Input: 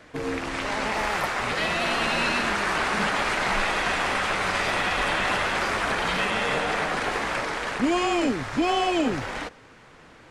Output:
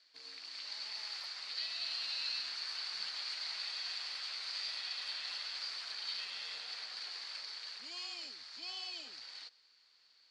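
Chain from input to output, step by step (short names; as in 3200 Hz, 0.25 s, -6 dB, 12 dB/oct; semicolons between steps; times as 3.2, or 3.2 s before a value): band-pass 4500 Hz, Q 13; gain +5 dB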